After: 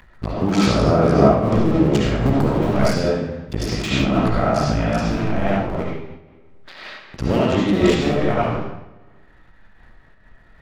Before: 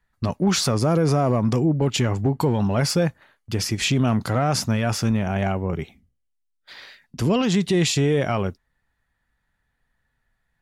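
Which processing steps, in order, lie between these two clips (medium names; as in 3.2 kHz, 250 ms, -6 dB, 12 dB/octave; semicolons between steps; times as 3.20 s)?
cycle switcher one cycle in 2, muted; treble shelf 4.2 kHz -11.5 dB; reverberation RT60 0.85 s, pre-delay 30 ms, DRR -6 dB; upward compressor, threshold -32 dBFS; treble shelf 11 kHz -2.5 dB, from 1.84 s +6 dB, from 4.06 s -4 dB; random flutter of the level, depth 60%; trim +4 dB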